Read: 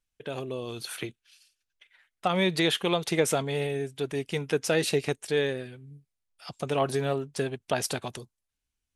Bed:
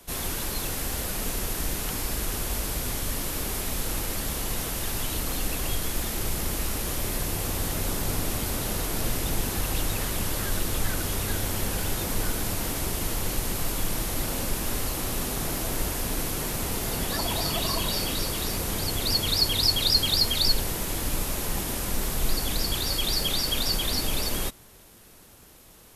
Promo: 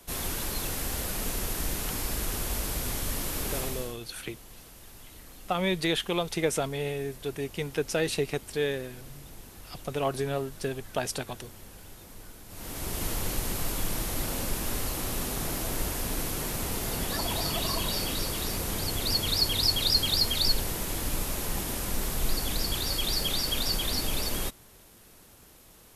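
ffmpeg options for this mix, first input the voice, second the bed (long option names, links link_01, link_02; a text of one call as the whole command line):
ffmpeg -i stem1.wav -i stem2.wav -filter_complex "[0:a]adelay=3250,volume=-2.5dB[link_01];[1:a]volume=15dB,afade=type=out:start_time=3.59:duration=0.38:silence=0.133352,afade=type=in:start_time=12.48:duration=0.56:silence=0.141254[link_02];[link_01][link_02]amix=inputs=2:normalize=0" out.wav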